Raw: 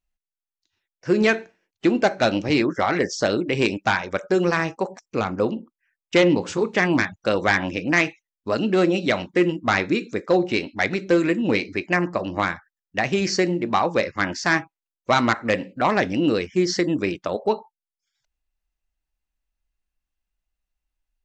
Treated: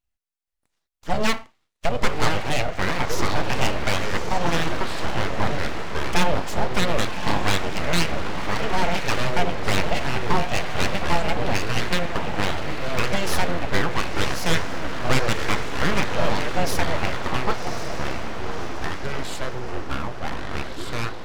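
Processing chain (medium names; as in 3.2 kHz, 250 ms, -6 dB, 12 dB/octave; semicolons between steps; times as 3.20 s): echo that smears into a reverb 1099 ms, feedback 50%, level -7.5 dB; full-wave rectifier; ever faster or slower copies 477 ms, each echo -6 st, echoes 2, each echo -6 dB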